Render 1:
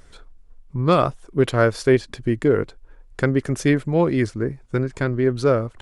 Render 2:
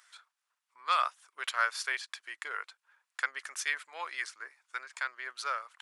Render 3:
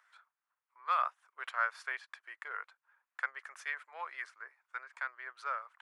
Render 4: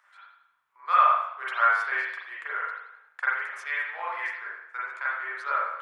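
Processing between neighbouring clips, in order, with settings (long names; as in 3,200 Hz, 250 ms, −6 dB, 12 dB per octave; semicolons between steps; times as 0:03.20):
high-pass filter 1,100 Hz 24 dB per octave; level −3.5 dB
three-way crossover with the lows and the highs turned down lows −19 dB, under 410 Hz, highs −17 dB, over 2,100 Hz; level −1.5 dB
convolution reverb RT60 0.80 s, pre-delay 36 ms, DRR −8 dB; level +2.5 dB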